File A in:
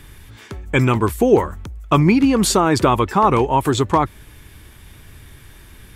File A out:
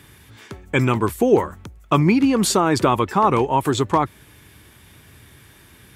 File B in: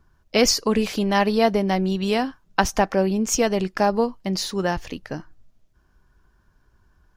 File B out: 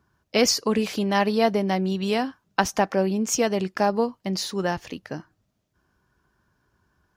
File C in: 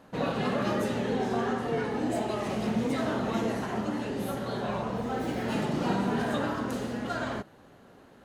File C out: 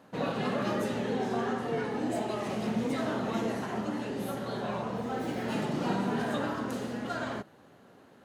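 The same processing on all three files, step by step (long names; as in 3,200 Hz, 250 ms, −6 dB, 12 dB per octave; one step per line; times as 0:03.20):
high-pass filter 97 Hz 12 dB per octave
level −2 dB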